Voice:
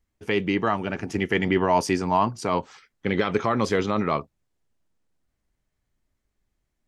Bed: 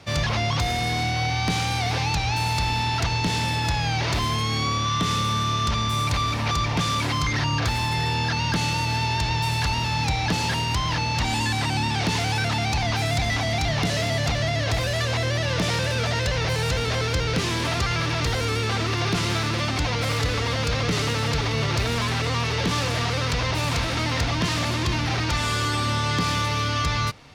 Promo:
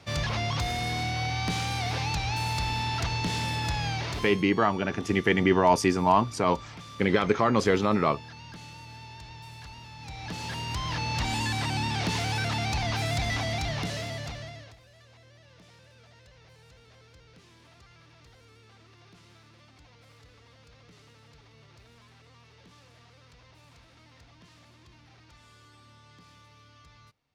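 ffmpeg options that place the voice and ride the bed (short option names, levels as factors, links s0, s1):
-filter_complex "[0:a]adelay=3950,volume=1[s0];[1:a]volume=3.35,afade=t=out:st=3.87:d=0.59:silence=0.16788,afade=t=in:st=9.99:d=1.18:silence=0.158489,afade=t=out:st=13.38:d=1.38:silence=0.0473151[s1];[s0][s1]amix=inputs=2:normalize=0"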